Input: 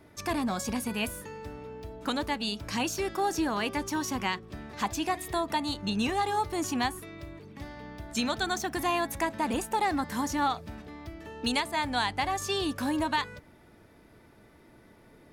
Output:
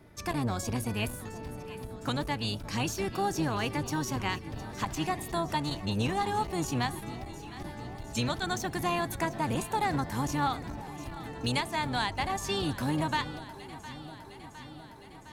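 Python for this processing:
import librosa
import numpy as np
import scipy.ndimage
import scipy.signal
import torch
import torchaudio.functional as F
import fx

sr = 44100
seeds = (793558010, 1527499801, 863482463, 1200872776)

y = fx.octave_divider(x, sr, octaves=1, level_db=1.0)
y = fx.echo_alternate(y, sr, ms=355, hz=820.0, feedback_pct=83, wet_db=-14)
y = fx.transformer_sat(y, sr, knee_hz=330.0)
y = y * 10.0 ** (-1.5 / 20.0)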